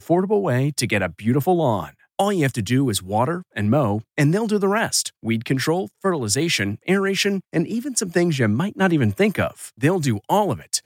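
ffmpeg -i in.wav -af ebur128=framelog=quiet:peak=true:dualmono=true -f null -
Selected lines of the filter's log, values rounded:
Integrated loudness:
  I:         -17.9 LUFS
  Threshold: -28.0 LUFS
Loudness range:
  LRA:         0.7 LU
  Threshold: -38.1 LUFS
  LRA low:   -18.4 LUFS
  LRA high:  -17.7 LUFS
True peak:
  Peak:       -5.3 dBFS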